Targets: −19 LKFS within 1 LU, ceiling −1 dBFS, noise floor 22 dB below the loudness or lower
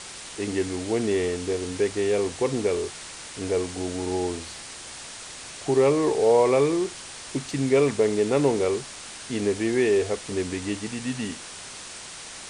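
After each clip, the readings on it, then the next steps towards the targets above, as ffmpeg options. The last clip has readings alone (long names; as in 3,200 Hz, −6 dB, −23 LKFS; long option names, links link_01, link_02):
background noise floor −40 dBFS; target noise floor −47 dBFS; integrated loudness −25.0 LKFS; sample peak −8.5 dBFS; target loudness −19.0 LKFS
→ -af "afftdn=noise_reduction=7:noise_floor=-40"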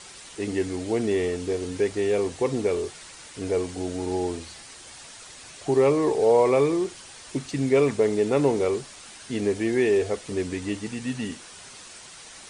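background noise floor −45 dBFS; target noise floor −47 dBFS
→ -af "afftdn=noise_reduction=6:noise_floor=-45"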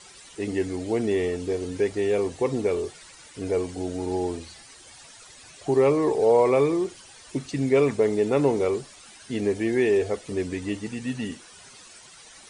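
background noise floor −49 dBFS; integrated loudness −25.0 LKFS; sample peak −8.5 dBFS; target loudness −19.0 LKFS
→ -af "volume=6dB"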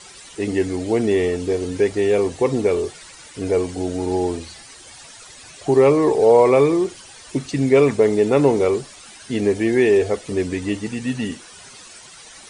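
integrated loudness −19.0 LKFS; sample peak −2.5 dBFS; background noise floor −43 dBFS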